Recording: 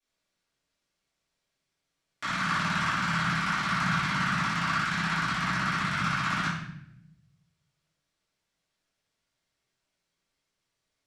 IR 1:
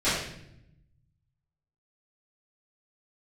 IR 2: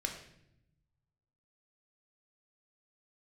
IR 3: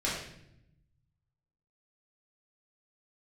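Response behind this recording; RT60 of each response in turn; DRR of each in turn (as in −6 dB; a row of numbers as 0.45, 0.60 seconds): 1; 0.75, 0.75, 0.75 seconds; −16.0, 2.5, −7.5 decibels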